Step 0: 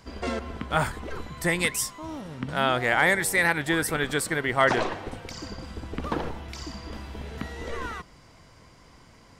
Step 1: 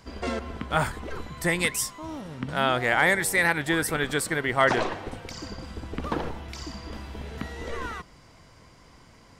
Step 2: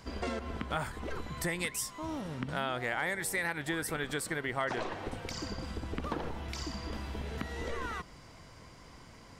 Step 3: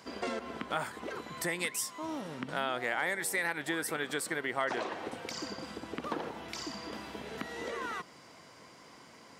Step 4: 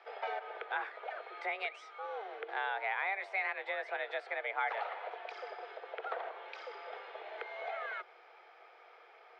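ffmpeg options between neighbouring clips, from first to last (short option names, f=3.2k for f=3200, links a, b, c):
-af anull
-af "acompressor=threshold=-34dB:ratio=3"
-af "highpass=230,volume=1dB"
-af "highpass=f=200:w=0.5412,highpass=f=200:w=1.3066,equalizer=f=210:t=q:w=4:g=-8,equalizer=f=360:t=q:w=4:g=-8,equalizer=f=560:t=q:w=4:g=3,equalizer=f=860:t=q:w=4:g=-9,equalizer=f=1.6k:t=q:w=4:g=-3,equalizer=f=2.6k:t=q:w=4:g=-5,lowpass=f=2.8k:w=0.5412,lowpass=f=2.8k:w=1.3066,afreqshift=200"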